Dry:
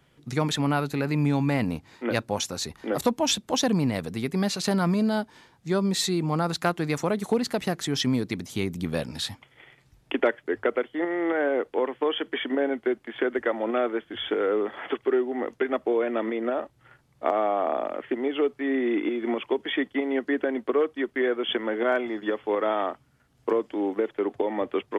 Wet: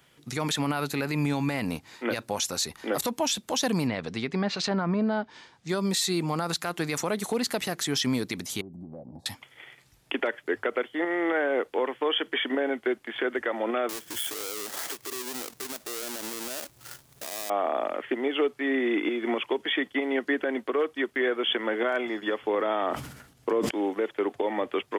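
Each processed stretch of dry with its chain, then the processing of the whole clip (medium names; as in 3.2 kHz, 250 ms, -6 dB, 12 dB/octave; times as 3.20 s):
3.87–5.69 s: low-pass 6.9 kHz + low-pass that closes with the level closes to 1.6 kHz, closed at -20 dBFS
8.61–9.26 s: elliptic low-pass 860 Hz + compression 5:1, threshold -36 dBFS + comb of notches 450 Hz
13.89–17.50 s: square wave that keeps the level + tone controls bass +2 dB, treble +7 dB + compression 2.5:1, threshold -38 dBFS
22.42–23.71 s: bass shelf 490 Hz +6 dB + decay stretcher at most 72 dB/s
whole clip: tilt EQ +2 dB/octave; peak limiter -19 dBFS; trim +2 dB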